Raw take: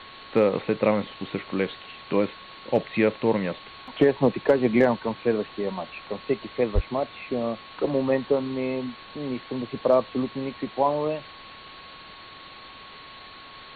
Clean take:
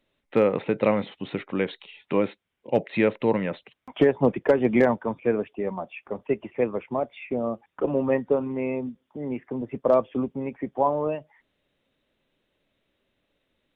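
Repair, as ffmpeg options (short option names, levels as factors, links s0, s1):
-filter_complex "[0:a]bandreject=f=1100:w=30,asplit=3[s0][s1][s2];[s0]afade=t=out:st=6.74:d=0.02[s3];[s1]highpass=f=140:w=0.5412,highpass=f=140:w=1.3066,afade=t=in:st=6.74:d=0.02,afade=t=out:st=6.86:d=0.02[s4];[s2]afade=t=in:st=6.86:d=0.02[s5];[s3][s4][s5]amix=inputs=3:normalize=0,afwtdn=0.011"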